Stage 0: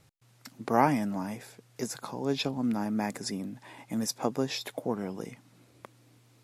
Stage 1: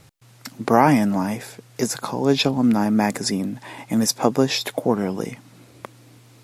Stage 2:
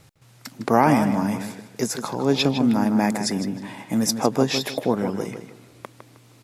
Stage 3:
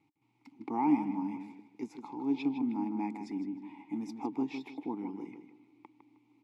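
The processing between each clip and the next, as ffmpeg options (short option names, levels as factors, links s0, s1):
-af "alimiter=level_in=4.22:limit=0.891:release=50:level=0:latency=1,volume=0.891"
-filter_complex "[0:a]asplit=2[s0][s1];[s1]adelay=156,lowpass=f=4100:p=1,volume=0.398,asplit=2[s2][s3];[s3]adelay=156,lowpass=f=4100:p=1,volume=0.31,asplit=2[s4][s5];[s5]adelay=156,lowpass=f=4100:p=1,volume=0.31,asplit=2[s6][s7];[s7]adelay=156,lowpass=f=4100:p=1,volume=0.31[s8];[s0][s2][s4][s6][s8]amix=inputs=5:normalize=0,volume=0.794"
-filter_complex "[0:a]asplit=3[s0][s1][s2];[s0]bandpass=f=300:t=q:w=8,volume=1[s3];[s1]bandpass=f=870:t=q:w=8,volume=0.501[s4];[s2]bandpass=f=2240:t=q:w=8,volume=0.355[s5];[s3][s4][s5]amix=inputs=3:normalize=0,volume=0.668"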